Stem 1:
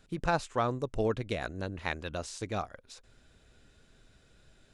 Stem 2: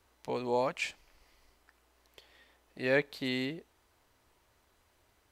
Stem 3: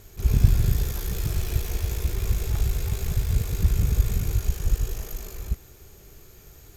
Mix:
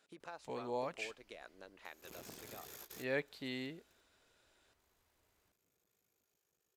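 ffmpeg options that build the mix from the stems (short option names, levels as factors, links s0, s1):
-filter_complex "[0:a]volume=0.473,asplit=2[s0][s1];[1:a]adelay=200,volume=0.355[s2];[2:a]asoftclip=type=hard:threshold=0.119,adelay=1850,volume=0.596,asplit=3[s3][s4][s5];[s3]atrim=end=4.01,asetpts=PTS-STARTPTS,afade=t=out:st=4.006:d=0.004:c=hsin[s6];[s4]atrim=start=4.01:end=4.79,asetpts=PTS-STARTPTS,volume=0[s7];[s5]atrim=start=4.79,asetpts=PTS-STARTPTS,afade=t=in:d=0.004:c=hsin[s8];[s6][s7][s8]concat=n=3:v=0:a=1[s9];[s1]apad=whole_len=380072[s10];[s9][s10]sidechaingate=range=0.0126:threshold=0.001:ratio=16:detection=peak[s11];[s0][s11]amix=inputs=2:normalize=0,highpass=410,acompressor=threshold=0.00141:ratio=2,volume=1[s12];[s2][s12]amix=inputs=2:normalize=0"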